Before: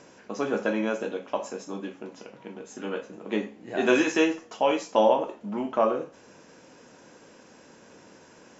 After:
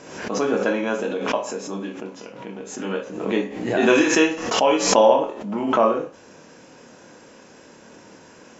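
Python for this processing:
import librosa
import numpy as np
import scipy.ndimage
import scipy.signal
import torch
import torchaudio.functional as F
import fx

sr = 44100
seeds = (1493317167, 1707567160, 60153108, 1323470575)

p1 = x + fx.room_early_taps(x, sr, ms=(26, 57), db=(-6.0, -13.0), dry=0)
p2 = fx.pre_swell(p1, sr, db_per_s=61.0)
y = p2 * 10.0 ** (4.0 / 20.0)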